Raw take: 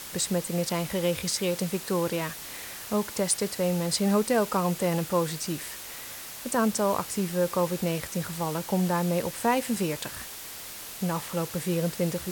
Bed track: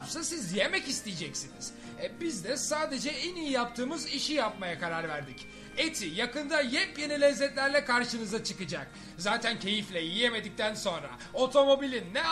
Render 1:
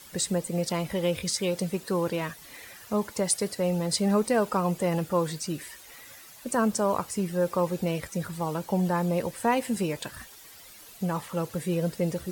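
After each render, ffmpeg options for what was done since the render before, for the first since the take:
ffmpeg -i in.wav -af "afftdn=noise_reduction=12:noise_floor=-41" out.wav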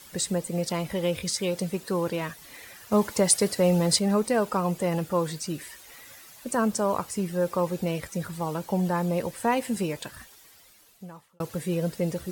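ffmpeg -i in.wav -filter_complex "[0:a]asettb=1/sr,asplit=3[link_01][link_02][link_03];[link_01]atrim=end=2.924[link_04];[link_02]atrim=start=2.92:end=3.99,asetpts=PTS-STARTPTS,afade=type=in:duration=0.004:curve=qsin,afade=type=out:start_time=1.066:duration=0.004:curve=qsin,acontrast=30[link_05];[link_03]atrim=start=3.986[link_06];[link_04][link_05]acrossfade=duration=0.004:curve1=hsin:curve2=qsin[link_07];[link_07][link_06]acrossfade=duration=0.004:curve1=qsin:curve2=hsin,asplit=2[link_08][link_09];[link_08]atrim=end=11.4,asetpts=PTS-STARTPTS,afade=type=out:start_time=9.83:duration=1.57[link_10];[link_09]atrim=start=11.4,asetpts=PTS-STARTPTS,afade=type=in:duration=0.004:curve=hsin[link_11];[link_10][link_11]concat=n=2:v=0:a=1" out.wav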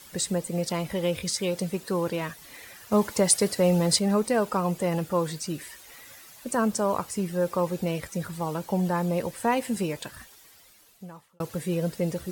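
ffmpeg -i in.wav -af anull out.wav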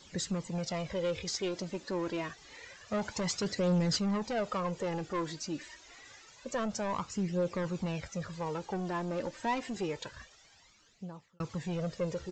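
ffmpeg -i in.wav -af "aresample=16000,asoftclip=type=tanh:threshold=-23.5dB,aresample=44100,flanger=delay=0.2:depth=3.3:regen=28:speed=0.27:shape=triangular" out.wav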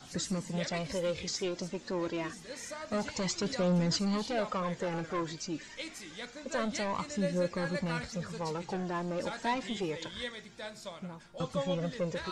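ffmpeg -i in.wav -i bed.wav -filter_complex "[1:a]volume=-12dB[link_01];[0:a][link_01]amix=inputs=2:normalize=0" out.wav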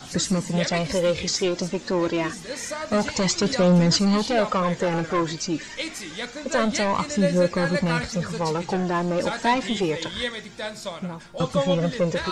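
ffmpeg -i in.wav -af "volume=11dB" out.wav

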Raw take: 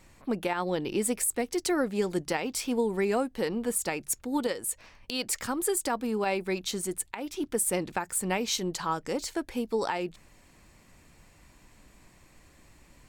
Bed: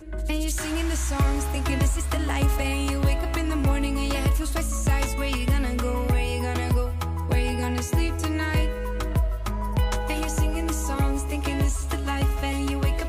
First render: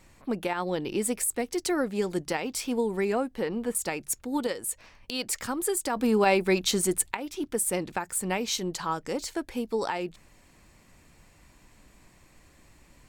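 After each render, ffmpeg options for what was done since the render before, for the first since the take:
ffmpeg -i in.wav -filter_complex "[0:a]asettb=1/sr,asplit=3[link_01][link_02][link_03];[link_01]atrim=end=3.124[link_04];[link_02]atrim=start=3.12:end=3.75,asetpts=PTS-STARTPTS,afade=type=in:duration=0.004:curve=qsin,afade=type=out:start_time=0.626:duration=0.004:curve=qsin,acrossover=split=3200[link_05][link_06];[link_06]acompressor=threshold=-51dB:ratio=4:attack=1:release=60[link_07];[link_05][link_07]amix=inputs=2:normalize=0[link_08];[link_03]atrim=start=3.746[link_09];[link_04][link_08]acrossfade=duration=0.004:curve1=hsin:curve2=qsin[link_10];[link_10][link_09]acrossfade=duration=0.004:curve1=qsin:curve2=hsin,asettb=1/sr,asplit=3[link_11][link_12][link_13];[link_11]atrim=end=5.964[link_14];[link_12]atrim=start=5.96:end=7.17,asetpts=PTS-STARTPTS,afade=type=in:duration=0.004:curve=qsin,afade=type=out:start_time=1.206:duration=0.004:curve=qsin,acontrast=76[link_15];[link_13]atrim=start=7.166[link_16];[link_14][link_15]acrossfade=duration=0.004:curve1=hsin:curve2=qsin[link_17];[link_17][link_16]acrossfade=duration=0.004:curve1=qsin:curve2=hsin" out.wav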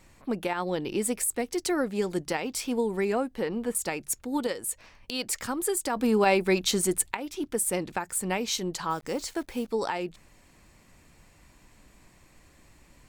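ffmpeg -i in.wav -filter_complex "[0:a]asplit=3[link_01][link_02][link_03];[link_01]afade=type=out:start_time=8.89:duration=0.02[link_04];[link_02]acrusher=bits=9:dc=4:mix=0:aa=0.000001,afade=type=in:start_time=8.89:duration=0.02,afade=type=out:start_time=9.68:duration=0.02[link_05];[link_03]afade=type=in:start_time=9.68:duration=0.02[link_06];[link_04][link_05][link_06]amix=inputs=3:normalize=0" out.wav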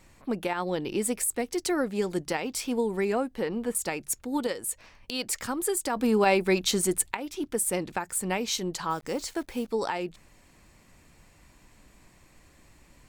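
ffmpeg -i in.wav -af anull out.wav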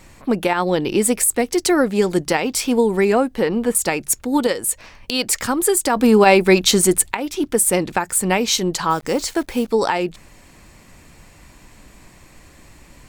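ffmpeg -i in.wav -af "volume=11dB,alimiter=limit=-1dB:level=0:latency=1" out.wav

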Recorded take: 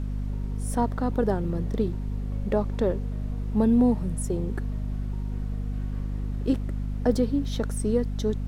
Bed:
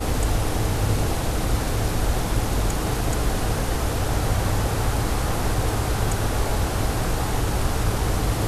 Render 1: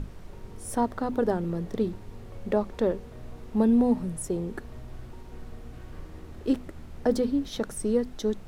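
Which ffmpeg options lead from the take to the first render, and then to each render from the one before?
ffmpeg -i in.wav -af "bandreject=frequency=50:width_type=h:width=6,bandreject=frequency=100:width_type=h:width=6,bandreject=frequency=150:width_type=h:width=6,bandreject=frequency=200:width_type=h:width=6,bandreject=frequency=250:width_type=h:width=6" out.wav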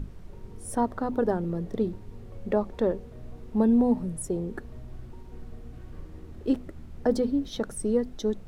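ffmpeg -i in.wav -af "afftdn=noise_reduction=6:noise_floor=-44" out.wav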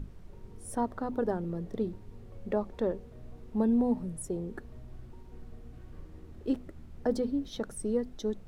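ffmpeg -i in.wav -af "volume=-5dB" out.wav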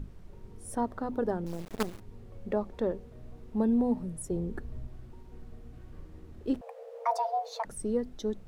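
ffmpeg -i in.wav -filter_complex "[0:a]asettb=1/sr,asplit=3[link_01][link_02][link_03];[link_01]atrim=end=1.464[link_04];[link_02]atrim=start=1.46:end=2,asetpts=PTS-STARTPTS,afade=type=in:duration=0.004:curve=qsin,afade=type=out:start_time=0.536:duration=0.004:curve=qsin,acrusher=bits=5:dc=4:mix=0:aa=0.000001[link_05];[link_03]atrim=start=1.996[link_06];[link_04][link_05]acrossfade=duration=0.004:curve1=hsin:curve2=qsin[link_07];[link_07][link_06]acrossfade=duration=0.004:curve1=qsin:curve2=hsin,asettb=1/sr,asplit=3[link_08][link_09][link_10];[link_08]atrim=end=4.314[link_11];[link_09]atrim=start=4.31:end=4.87,asetpts=PTS-STARTPTS,afade=type=in:duration=0.004:curve=qsin,afade=type=out:start_time=0.556:duration=0.004:curve=qsin,lowshelf=frequency=170:gain=8.5[link_12];[link_10]atrim=start=4.866[link_13];[link_11][link_12]acrossfade=duration=0.004:curve1=hsin:curve2=qsin[link_14];[link_14][link_13]acrossfade=duration=0.004:curve1=qsin:curve2=hsin,asettb=1/sr,asplit=3[link_15][link_16][link_17];[link_15]atrim=end=6.614[link_18];[link_16]atrim=start=6.61:end=7.65,asetpts=PTS-STARTPTS,afade=type=in:duration=0.004:curve=qsin,afade=type=out:start_time=1.036:duration=0.004:curve=qsin,afreqshift=450[link_19];[link_17]atrim=start=7.646[link_20];[link_18][link_19]acrossfade=duration=0.004:curve1=hsin:curve2=qsin[link_21];[link_21][link_20]acrossfade=duration=0.004:curve1=qsin:curve2=hsin" out.wav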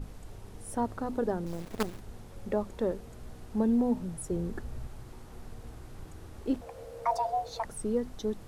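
ffmpeg -i in.wav -i bed.wav -filter_complex "[1:a]volume=-28.5dB[link_01];[0:a][link_01]amix=inputs=2:normalize=0" out.wav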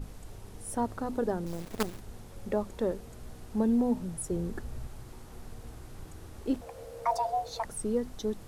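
ffmpeg -i in.wav -af "highshelf=frequency=4700:gain=4.5" out.wav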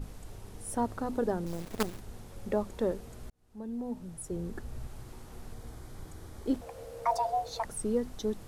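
ffmpeg -i in.wav -filter_complex "[0:a]asettb=1/sr,asplit=3[link_01][link_02][link_03];[link_01]atrim=end=5.534[link_04];[link_02]atrim=start=5.53:end=6.56,asetpts=PTS-STARTPTS,afade=type=in:duration=0.004:curve=qsin,afade=type=out:start_time=1.026:duration=0.004:curve=qsin,bandreject=frequency=2700:width=8.1[link_05];[link_03]atrim=start=6.556[link_06];[link_04][link_05]acrossfade=duration=0.004:curve1=hsin:curve2=qsin[link_07];[link_07][link_06]acrossfade=duration=0.004:curve1=qsin:curve2=hsin,asplit=2[link_08][link_09];[link_08]atrim=end=3.3,asetpts=PTS-STARTPTS,afade=type=out:start_time=3.296:duration=0.004:curve=hsin[link_10];[link_09]atrim=start=3.3,asetpts=PTS-STARTPTS,afade=type=in:duration=1.69[link_11];[link_10][link_11]concat=n=2:v=0:a=1" out.wav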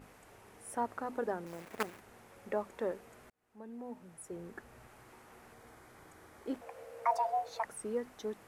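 ffmpeg -i in.wav -af "highpass=frequency=720:poles=1,highshelf=frequency=2900:width_type=q:width=1.5:gain=-7" out.wav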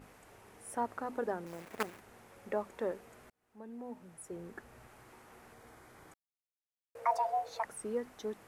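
ffmpeg -i in.wav -filter_complex "[0:a]asplit=3[link_01][link_02][link_03];[link_01]atrim=end=6.14,asetpts=PTS-STARTPTS,afade=type=out:start_time=6.136:duration=0.004:curve=hsin[link_04];[link_02]atrim=start=6.14:end=6.95,asetpts=PTS-STARTPTS,volume=0[link_05];[link_03]atrim=start=6.95,asetpts=PTS-STARTPTS,afade=type=in:duration=0.004:curve=hsin[link_06];[link_04][link_05][link_06]concat=n=3:v=0:a=1" out.wav

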